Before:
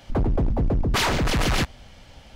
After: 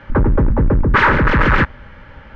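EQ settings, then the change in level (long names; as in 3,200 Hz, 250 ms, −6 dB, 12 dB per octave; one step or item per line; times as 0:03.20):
Butterworth band-reject 710 Hz, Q 4.2
low-pass with resonance 1,600 Hz, resonance Q 2.6
+8.0 dB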